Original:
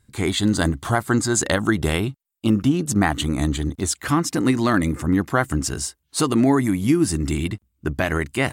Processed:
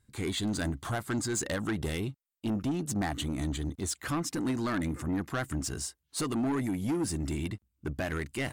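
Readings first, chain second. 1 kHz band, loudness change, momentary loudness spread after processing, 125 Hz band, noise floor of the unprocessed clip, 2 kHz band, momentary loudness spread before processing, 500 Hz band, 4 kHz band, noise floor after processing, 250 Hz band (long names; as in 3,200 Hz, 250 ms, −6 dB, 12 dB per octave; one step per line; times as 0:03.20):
−12.5 dB, −11.5 dB, 5 LU, −11.0 dB, −72 dBFS, −12.0 dB, 7 LU, −12.0 dB, −10.5 dB, −80 dBFS, −11.5 dB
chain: soft clipping −17.5 dBFS, distortion −10 dB
level −8 dB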